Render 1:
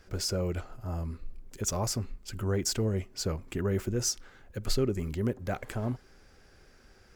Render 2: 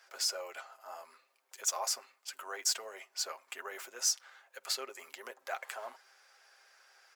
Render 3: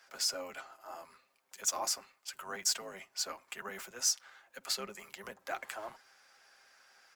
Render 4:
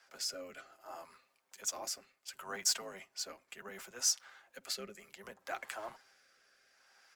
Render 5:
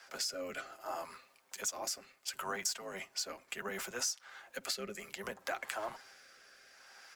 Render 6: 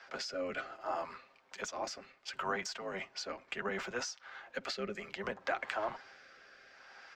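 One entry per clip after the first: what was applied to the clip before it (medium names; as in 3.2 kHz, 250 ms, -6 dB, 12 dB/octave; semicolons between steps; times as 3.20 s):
high-pass 710 Hz 24 dB/octave; comb 7.5 ms, depth 38%
octave divider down 1 oct, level +1 dB
rotary cabinet horn 0.65 Hz
compression 5:1, threshold -44 dBFS, peak gain reduction 16 dB; trim +9 dB
distance through air 190 m; trim +4.5 dB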